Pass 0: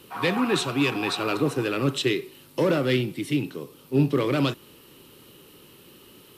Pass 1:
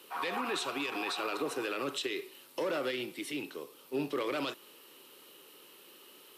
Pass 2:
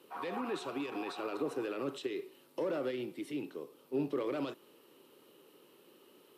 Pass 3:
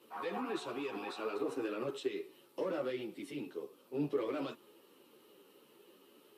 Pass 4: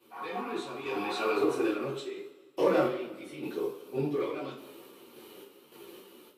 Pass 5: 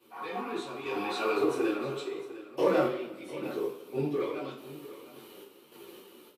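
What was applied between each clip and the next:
high-pass filter 450 Hz 12 dB per octave; brickwall limiter −22 dBFS, peak gain reduction 11 dB; level −3 dB
tilt shelving filter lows +7 dB; level −5 dB
string-ensemble chorus; level +2 dB
sample-and-hold tremolo 3.5 Hz, depth 95%; coupled-rooms reverb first 0.28 s, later 1.5 s, from −18 dB, DRR −7.5 dB; level +5.5 dB
single-tap delay 702 ms −15.5 dB

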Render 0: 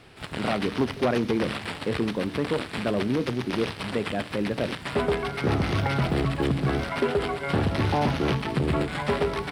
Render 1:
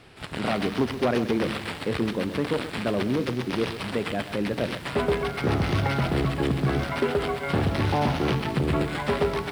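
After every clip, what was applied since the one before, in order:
feedback echo at a low word length 128 ms, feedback 35%, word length 7 bits, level −11.5 dB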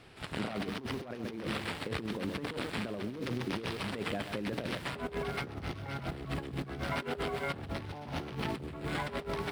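compressor whose output falls as the input rises −28 dBFS, ratio −0.5
level −8 dB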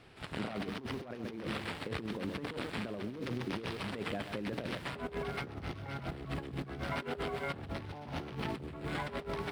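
high-shelf EQ 5,200 Hz −4 dB
level −2 dB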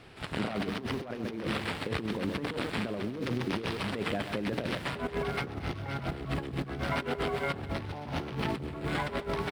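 single-tap delay 228 ms −19 dB
level +5.5 dB

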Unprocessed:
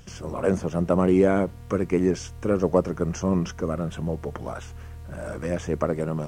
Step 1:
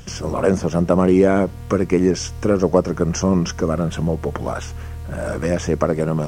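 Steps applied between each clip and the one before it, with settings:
dynamic equaliser 5,400 Hz, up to +6 dB, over −58 dBFS, Q 3.6
in parallel at +1.5 dB: downward compressor, threshold −25 dBFS, peak gain reduction 11 dB
on the sum: level +2 dB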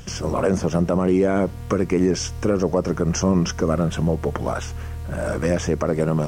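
brickwall limiter −9 dBFS, peak gain reduction 7 dB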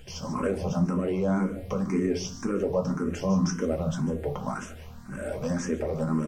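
single-tap delay 148 ms −14.5 dB
convolution reverb RT60 0.50 s, pre-delay 4 ms, DRR 2.5 dB
frequency shifter mixed with the dry sound +1.9 Hz
level −7 dB

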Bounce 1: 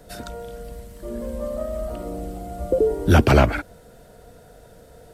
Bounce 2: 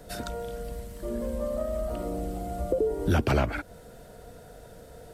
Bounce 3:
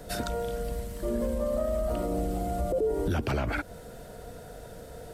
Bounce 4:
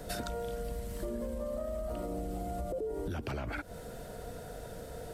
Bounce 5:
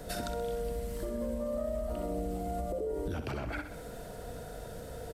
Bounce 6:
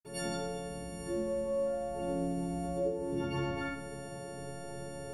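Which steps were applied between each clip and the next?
downward compressor 2 to 1, threshold −28 dBFS, peak gain reduction 10 dB
brickwall limiter −24 dBFS, peak gain reduction 10 dB; level +3.5 dB
downward compressor, threshold −34 dBFS, peak gain reduction 10 dB
repeating echo 64 ms, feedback 57%, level −9.5 dB
every partial snapped to a pitch grid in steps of 4 semitones; convolution reverb, pre-delay 46 ms

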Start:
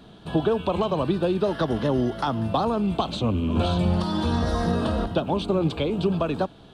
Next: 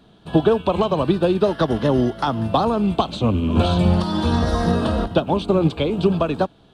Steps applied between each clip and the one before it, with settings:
expander for the loud parts 1.5 to 1, over −40 dBFS
level +7 dB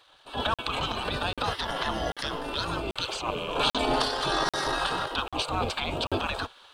transient designer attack −7 dB, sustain +6 dB
gate on every frequency bin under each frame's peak −15 dB weak
regular buffer underruns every 0.79 s, samples 2,048, zero, from 0:00.54
level +3 dB

